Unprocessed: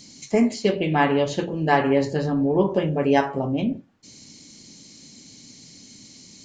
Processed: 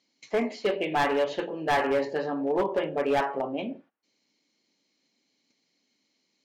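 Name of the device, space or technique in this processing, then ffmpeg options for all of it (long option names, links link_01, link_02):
walkie-talkie: -af "highpass=450,lowpass=2900,asoftclip=type=hard:threshold=-19.5dB,agate=range=-18dB:threshold=-52dB:ratio=16:detection=peak"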